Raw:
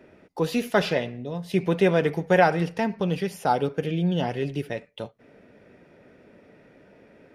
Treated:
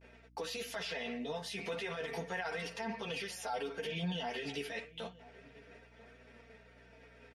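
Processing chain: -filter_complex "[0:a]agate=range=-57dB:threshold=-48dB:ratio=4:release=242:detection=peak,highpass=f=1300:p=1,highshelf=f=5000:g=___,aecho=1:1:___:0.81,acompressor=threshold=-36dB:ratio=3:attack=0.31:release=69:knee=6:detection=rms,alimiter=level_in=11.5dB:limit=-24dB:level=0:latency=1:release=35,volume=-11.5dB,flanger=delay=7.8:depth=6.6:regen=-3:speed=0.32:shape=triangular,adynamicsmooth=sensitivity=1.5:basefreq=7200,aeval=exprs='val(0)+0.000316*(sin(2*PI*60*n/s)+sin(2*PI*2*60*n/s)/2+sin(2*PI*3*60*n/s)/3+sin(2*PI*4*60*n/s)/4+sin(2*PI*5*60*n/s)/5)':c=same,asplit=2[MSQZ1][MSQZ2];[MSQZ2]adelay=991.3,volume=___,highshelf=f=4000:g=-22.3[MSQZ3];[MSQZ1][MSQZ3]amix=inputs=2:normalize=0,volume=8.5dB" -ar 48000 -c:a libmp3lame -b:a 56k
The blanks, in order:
8.5, 4.4, -18dB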